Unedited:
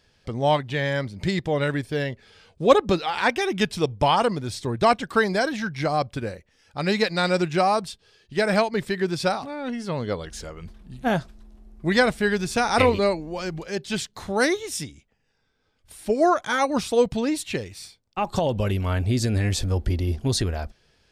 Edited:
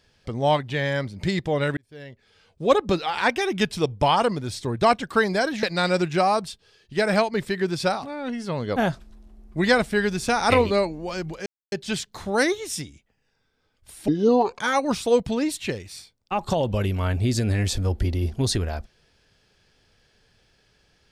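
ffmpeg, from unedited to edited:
-filter_complex "[0:a]asplit=7[a][b][c][d][e][f][g];[a]atrim=end=1.77,asetpts=PTS-STARTPTS,afade=t=out:st=1.766:d=0.004:c=hsin[h];[b]atrim=start=1.77:end=5.632,asetpts=PTS-STARTPTS,afade=t=in:d=1.28[i];[c]atrim=start=7.028:end=10.162[j];[d]atrim=start=11.038:end=13.74,asetpts=PTS-STARTPTS,afade=t=out:st=2.698:d=0.004:c=hsin,apad=pad_dur=0.26[k];[e]atrim=start=13.74:end=16.104,asetpts=PTS-STARTPTS,afade=t=in:d=0.004:c=hsin[l];[f]atrim=start=16.1:end=16.46,asetpts=PTS-STARTPTS,asetrate=30429,aresample=44100[m];[g]atrim=start=16.456[n];[h][i]concat=n=2:v=0:a=1[o];[o][j]acrossfade=d=0.004:c1=hsin:c2=hsin[p];[k][l]concat=n=2:v=0:a=1[q];[p][q]acrossfade=d=0.004:c1=hsin:c2=hsin[r];[r][m]acrossfade=d=0.004:c1=hsin:c2=hsin[s];[s][n]acrossfade=d=0.004:c1=hsin:c2=hsin"

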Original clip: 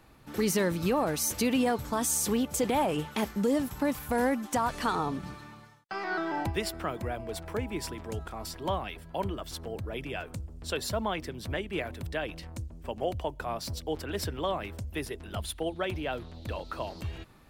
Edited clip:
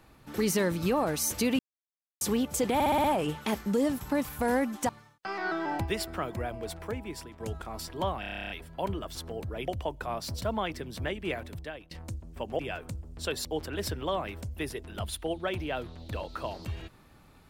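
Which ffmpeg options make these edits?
-filter_complex "[0:a]asplit=25[a][b][c][d][e][f][g][h][i][j][k][l][m][n][o][p][q][r][s][t][u][v][w][x][y];[a]atrim=end=1.59,asetpts=PTS-STARTPTS,afade=t=out:st=1.586:d=0.004:c=hsin[z];[b]atrim=start=1.59:end=2.21,asetpts=PTS-STARTPTS,volume=0[aa];[c]atrim=start=2.21:end=2.802,asetpts=PTS-STARTPTS,afade=t=in:d=0.004:c=hsin[ab];[d]atrim=start=2.738:end=2.802[ac];[e]atrim=start=2.738:end=2.802[ad];[f]atrim=start=2.738:end=2.802[ae];[g]atrim=start=2.738:end=2.802[af];[h]atrim=start=2.738:end=4.592[ag];[i]atrim=start=5.548:end=8.06,asetpts=PTS-STARTPTS,afade=t=out:st=1.722:d=0.79:silence=0.354813[ah];[j]atrim=start=8.06:end=8.892,asetpts=PTS-STARTPTS,afade=t=in:d=0.004:c=hsin:silence=0.354813[ai];[k]atrim=start=8.858:end=8.892[aj];[l]atrim=start=8.858:end=8.892[ak];[m]atrim=start=8.858:end=8.892[al];[n]atrim=start=8.858:end=8.892[am];[o]atrim=start=8.858:end=8.892[an];[p]atrim=start=8.858:end=8.892[ao];[q]atrim=start=8.858:end=8.892[ap];[r]atrim=start=8.858:end=8.892[aq];[s]atrim=start=8.858:end=8.892[ar];[t]atrim=start=8.858:end=10.042[as];[u]atrim=start=13.068:end=13.812[at];[v]atrim=start=10.898:end=12.39,asetpts=PTS-STARTPTS,afade=t=out:st=0.942:d=0.55:silence=0.1[au];[w]atrim=start=12.39:end=13.072,asetpts=PTS-STARTPTS,afade=t=in:d=0.004:c=hsin:silence=0.1[av];[x]atrim=start=10.038:end=10.902[aw];[y]atrim=start=13.808[ax];[z][aa][ab]concat=n=3:v=0:a=1[ay];[ay][ac]acrossfade=d=0.004:c1=hsin:c2=hsin[az];[az][ad]acrossfade=d=0.004:c1=hsin:c2=hsin[ba];[ba][ae]acrossfade=d=0.004:c1=hsin:c2=hsin[bb];[bb][af]acrossfade=d=0.004:c1=hsin:c2=hsin[bc];[bc][ag]acrossfade=d=0.004:c1=hsin:c2=hsin[bd];[ah][ai]concat=n=2:v=0:a=1[be];[bd][be]acrossfade=d=0.004:c1=hsin:c2=hsin[bf];[bf][aj]acrossfade=d=0.004:c1=hsin:c2=hsin[bg];[bg][ak]acrossfade=d=0.004:c1=hsin:c2=hsin[bh];[bh][al]acrossfade=d=0.004:c1=hsin:c2=hsin[bi];[bi][am]acrossfade=d=0.004:c1=hsin:c2=hsin[bj];[bj][an]acrossfade=d=0.004:c1=hsin:c2=hsin[bk];[bk][ao]acrossfade=d=0.004:c1=hsin:c2=hsin[bl];[bl][ap]acrossfade=d=0.004:c1=hsin:c2=hsin[bm];[bm][aq]acrossfade=d=0.004:c1=hsin:c2=hsin[bn];[bn][ar]acrossfade=d=0.004:c1=hsin:c2=hsin[bo];[bo][as]acrossfade=d=0.004:c1=hsin:c2=hsin[bp];[bp][at]acrossfade=d=0.004:c1=hsin:c2=hsin[bq];[au][av]concat=n=2:v=0:a=1[br];[bq][br]acrossfade=d=0.004:c1=hsin:c2=hsin[bs];[bs][aw]acrossfade=d=0.004:c1=hsin:c2=hsin[bt];[bt][ax]acrossfade=d=0.004:c1=hsin:c2=hsin"

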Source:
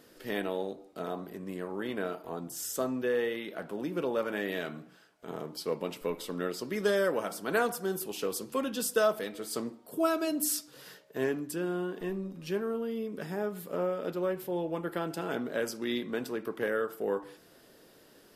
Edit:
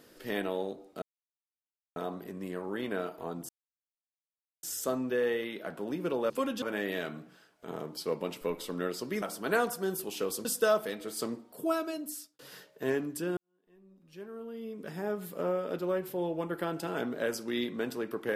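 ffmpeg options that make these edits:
-filter_complex "[0:a]asplit=9[a][b][c][d][e][f][g][h][i];[a]atrim=end=1.02,asetpts=PTS-STARTPTS,afade=t=out:st=1.016:d=0.004:c=hsin,apad=pad_dur=0.94[j];[b]atrim=start=1.02:end=2.55,asetpts=PTS-STARTPTS,afade=t=in:d=0.004:c=hsin,afade=t=out:st=1.526:d=0.004:c=hsin,apad=pad_dur=1.14[k];[c]atrim=start=2.55:end=4.222,asetpts=PTS-STARTPTS,afade=t=in:d=0.004:c=hsin[l];[d]atrim=start=8.468:end=8.792[m];[e]atrim=start=4.218:end=6.822[n];[f]atrim=start=7.238:end=8.472[o];[g]atrim=start=8.788:end=10.73,asetpts=PTS-STARTPTS,afade=t=out:st=1.052:d=0.89[p];[h]atrim=start=10.73:end=11.71,asetpts=PTS-STARTPTS,afade=t=in:d=0.004:c=hsin,afade=t=out:st=0.976:d=0.004:c=hsin[q];[i]atrim=start=11.71,asetpts=PTS-STARTPTS,afade=t=in:d=1.78:c=qua[r];[j][k][l]concat=n=3:v=0:a=1[s];[s][m]acrossfade=d=0.004:c1=hsin:c2=hsin[t];[t][n]acrossfade=d=0.004:c1=hsin:c2=hsin[u];[u][o]acrossfade=d=0.004:c1=hsin:c2=hsin[v];[p][q][r]concat=n=3:v=0:a=1[w];[v][w]acrossfade=d=0.004:c1=hsin:c2=hsin"

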